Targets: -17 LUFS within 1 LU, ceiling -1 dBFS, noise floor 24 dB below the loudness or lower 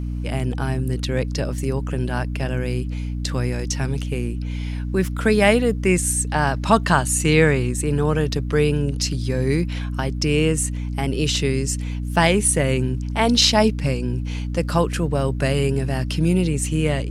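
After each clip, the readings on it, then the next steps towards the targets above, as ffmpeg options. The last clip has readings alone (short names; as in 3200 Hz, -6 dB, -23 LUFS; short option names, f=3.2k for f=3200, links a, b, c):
hum 60 Hz; harmonics up to 300 Hz; hum level -23 dBFS; loudness -21.0 LUFS; peak -1.0 dBFS; loudness target -17.0 LUFS
-> -af "bandreject=f=60:t=h:w=6,bandreject=f=120:t=h:w=6,bandreject=f=180:t=h:w=6,bandreject=f=240:t=h:w=6,bandreject=f=300:t=h:w=6"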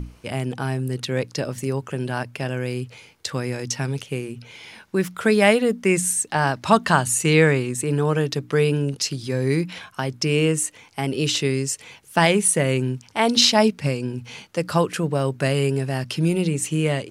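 hum none; loudness -22.0 LUFS; peak -1.5 dBFS; loudness target -17.0 LUFS
-> -af "volume=5dB,alimiter=limit=-1dB:level=0:latency=1"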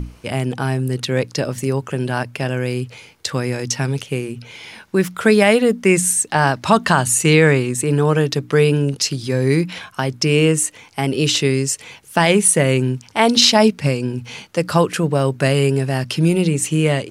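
loudness -17.5 LUFS; peak -1.0 dBFS; noise floor -46 dBFS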